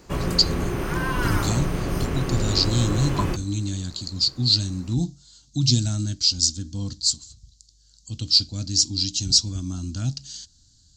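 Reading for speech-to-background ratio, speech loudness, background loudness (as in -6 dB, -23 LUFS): 4.0 dB, -23.0 LUFS, -27.0 LUFS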